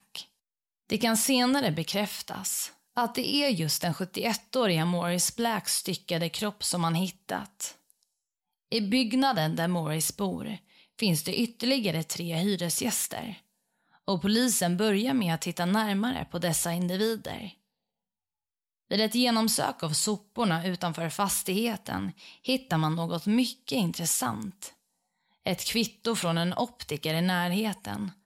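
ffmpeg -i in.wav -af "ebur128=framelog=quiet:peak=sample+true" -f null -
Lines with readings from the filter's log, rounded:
Integrated loudness:
  I:         -28.0 LUFS
  Threshold: -38.4 LUFS
Loudness range:
  LRA:         3.0 LU
  Threshold: -48.8 LUFS
  LRA low:   -30.3 LUFS
  LRA high:  -27.3 LUFS
Sample peak:
  Peak:      -12.8 dBFS
True peak:
  Peak:      -12.6 dBFS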